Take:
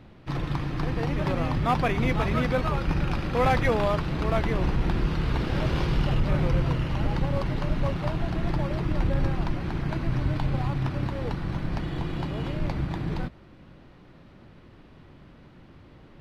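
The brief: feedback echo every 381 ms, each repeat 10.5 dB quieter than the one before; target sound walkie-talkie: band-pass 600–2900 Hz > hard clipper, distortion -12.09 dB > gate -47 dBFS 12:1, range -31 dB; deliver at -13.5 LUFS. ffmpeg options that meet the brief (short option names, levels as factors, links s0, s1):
-af "highpass=600,lowpass=2900,aecho=1:1:381|762|1143:0.299|0.0896|0.0269,asoftclip=type=hard:threshold=0.0562,agate=range=0.0282:threshold=0.00447:ratio=12,volume=12.6"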